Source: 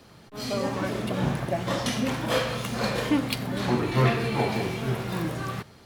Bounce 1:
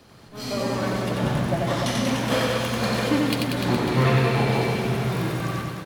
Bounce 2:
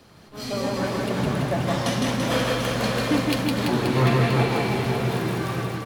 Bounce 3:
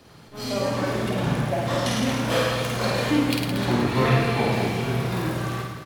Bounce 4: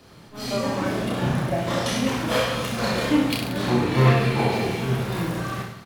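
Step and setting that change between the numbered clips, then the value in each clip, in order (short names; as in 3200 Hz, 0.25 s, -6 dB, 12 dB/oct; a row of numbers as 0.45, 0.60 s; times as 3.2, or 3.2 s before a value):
reverse bouncing-ball echo, first gap: 90, 160, 50, 30 ms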